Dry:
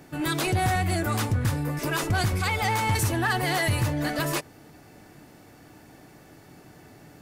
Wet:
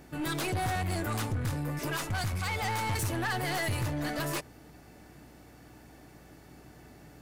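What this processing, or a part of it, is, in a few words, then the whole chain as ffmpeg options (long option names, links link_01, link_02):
valve amplifier with mains hum: -filter_complex "[0:a]aeval=exprs='(tanh(15.8*val(0)+0.25)-tanh(0.25))/15.8':channel_layout=same,aeval=exprs='val(0)+0.00178*(sin(2*PI*60*n/s)+sin(2*PI*2*60*n/s)/2+sin(2*PI*3*60*n/s)/3+sin(2*PI*4*60*n/s)/4+sin(2*PI*5*60*n/s)/5)':channel_layout=same,asettb=1/sr,asplit=3[link_01][link_02][link_03];[link_01]atrim=end=1.964[link_04];[link_02]atrim=start=1.96:end=2.5,asetpts=PTS-STARTPTS,afade=type=in:duration=0.004:curve=qsin,afade=type=out:start_time=0.536:duration=0.004:curve=qsin,equalizer=frequency=380:width_type=o:width=0.92:gain=-8.5[link_05];[link_03]atrim=start=2.496[link_06];[link_04][link_05]acrossfade=duration=0.004:curve1=hsin:curve2=qsin[link_07];[link_07][link_06]acrossfade=duration=0.004:curve1=qsin:curve2=hsin,volume=-3dB"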